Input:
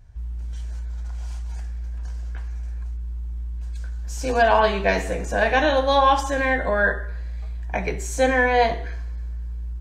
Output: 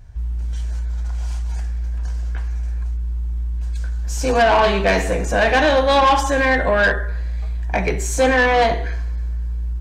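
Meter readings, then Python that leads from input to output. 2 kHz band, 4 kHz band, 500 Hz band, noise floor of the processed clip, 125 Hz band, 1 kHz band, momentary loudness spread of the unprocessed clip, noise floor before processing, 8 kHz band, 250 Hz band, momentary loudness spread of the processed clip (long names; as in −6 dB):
+4.0 dB, +5.5 dB, +4.0 dB, −23 dBFS, +6.0 dB, +3.0 dB, 15 LU, −30 dBFS, +6.5 dB, +5.0 dB, 12 LU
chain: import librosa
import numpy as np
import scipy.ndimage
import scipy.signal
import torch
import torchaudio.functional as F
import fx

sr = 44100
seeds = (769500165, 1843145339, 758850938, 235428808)

y = 10.0 ** (-16.5 / 20.0) * np.tanh(x / 10.0 ** (-16.5 / 20.0))
y = y * 10.0 ** (7.0 / 20.0)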